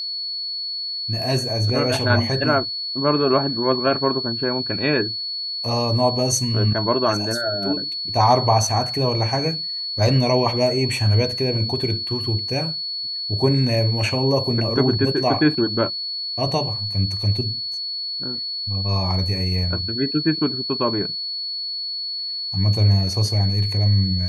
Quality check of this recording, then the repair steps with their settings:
whistle 4,400 Hz −25 dBFS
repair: notch filter 4,400 Hz, Q 30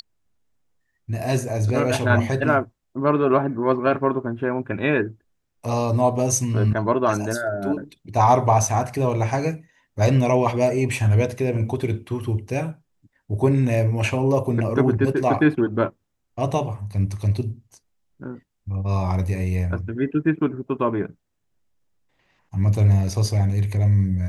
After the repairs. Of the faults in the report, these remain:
none of them is left

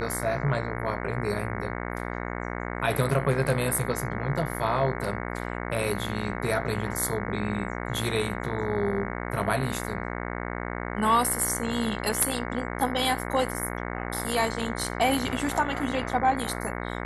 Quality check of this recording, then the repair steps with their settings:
mains buzz 60 Hz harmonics 37 −33 dBFS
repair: hum removal 60 Hz, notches 37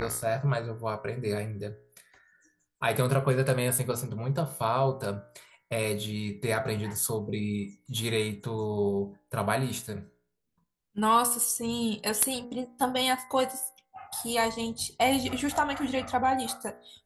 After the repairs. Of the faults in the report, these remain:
none of them is left

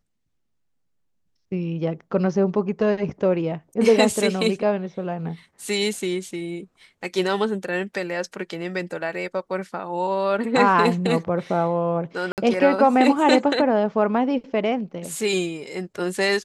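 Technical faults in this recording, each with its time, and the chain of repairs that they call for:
0:12.32–0:12.38: drop-out 58 ms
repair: repair the gap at 0:12.32, 58 ms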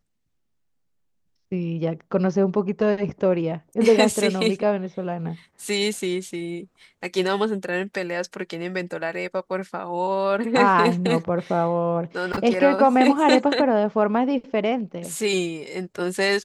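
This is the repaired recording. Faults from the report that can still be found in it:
none of them is left

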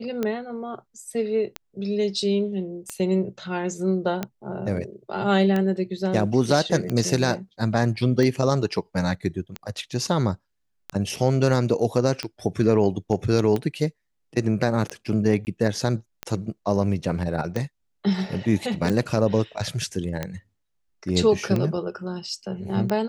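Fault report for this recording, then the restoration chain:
scratch tick 45 rpm −13 dBFS
0:15.45–0:15.47: drop-out 19 ms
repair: click removal
repair the gap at 0:15.45, 19 ms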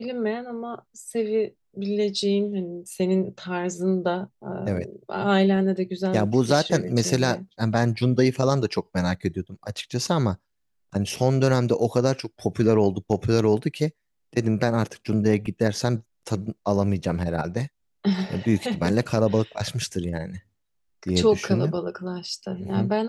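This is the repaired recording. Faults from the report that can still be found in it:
none of them is left

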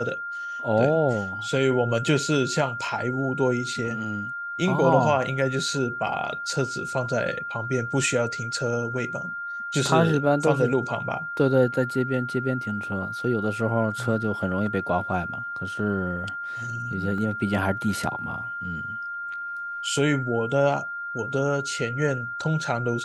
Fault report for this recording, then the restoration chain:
whistle 1,400 Hz −30 dBFS
0:17.18: drop-out 2.2 ms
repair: notch filter 1,400 Hz, Q 30
repair the gap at 0:17.18, 2.2 ms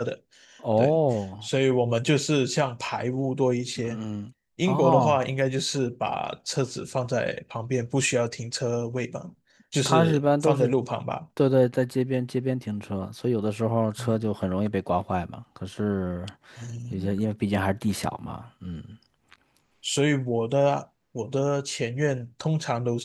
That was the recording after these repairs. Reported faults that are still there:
none of them is left

